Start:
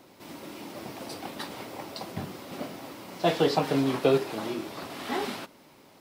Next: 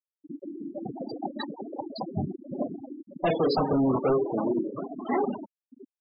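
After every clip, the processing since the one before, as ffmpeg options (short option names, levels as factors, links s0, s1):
-filter_complex "[0:a]volume=26.6,asoftclip=hard,volume=0.0376,asplit=2[s0][s1];[s1]adelay=629,lowpass=f=1100:p=1,volume=0.178,asplit=2[s2][s3];[s3]adelay=629,lowpass=f=1100:p=1,volume=0.53,asplit=2[s4][s5];[s5]adelay=629,lowpass=f=1100:p=1,volume=0.53,asplit=2[s6][s7];[s7]adelay=629,lowpass=f=1100:p=1,volume=0.53,asplit=2[s8][s9];[s9]adelay=629,lowpass=f=1100:p=1,volume=0.53[s10];[s0][s2][s4][s6][s8][s10]amix=inputs=6:normalize=0,afftfilt=real='re*gte(hypot(re,im),0.0447)':imag='im*gte(hypot(re,im),0.0447)':win_size=1024:overlap=0.75,volume=2.51"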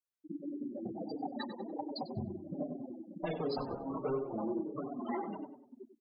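-filter_complex "[0:a]acompressor=threshold=0.02:ratio=3,asplit=2[s0][s1];[s1]adelay=96,lowpass=f=2100:p=1,volume=0.376,asplit=2[s2][s3];[s3]adelay=96,lowpass=f=2100:p=1,volume=0.43,asplit=2[s4][s5];[s5]adelay=96,lowpass=f=2100:p=1,volume=0.43,asplit=2[s6][s7];[s7]adelay=96,lowpass=f=2100:p=1,volume=0.43,asplit=2[s8][s9];[s9]adelay=96,lowpass=f=2100:p=1,volume=0.43[s10];[s2][s4][s6][s8][s10]amix=inputs=5:normalize=0[s11];[s0][s11]amix=inputs=2:normalize=0,asplit=2[s12][s13];[s13]adelay=5.2,afreqshift=-1.4[s14];[s12][s14]amix=inputs=2:normalize=1"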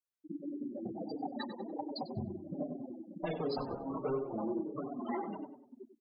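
-af anull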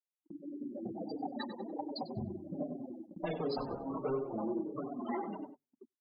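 -af "agate=range=0.0178:threshold=0.00398:ratio=16:detection=peak,bandreject=f=50:t=h:w=6,bandreject=f=100:t=h:w=6,bandreject=f=150:t=h:w=6,dynaudnorm=f=220:g=5:m=2.11,volume=0.473"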